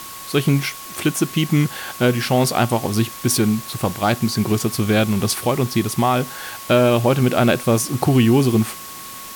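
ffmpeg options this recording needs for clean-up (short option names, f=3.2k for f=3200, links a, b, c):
-af "bandreject=f=1.1k:w=30,afftdn=nr=29:nf=-35"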